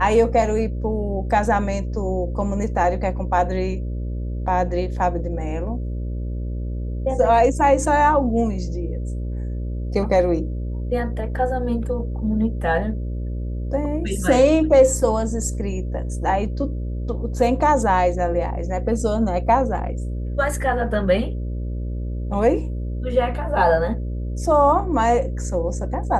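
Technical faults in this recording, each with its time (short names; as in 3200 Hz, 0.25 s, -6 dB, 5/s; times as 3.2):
buzz 60 Hz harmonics 10 -26 dBFS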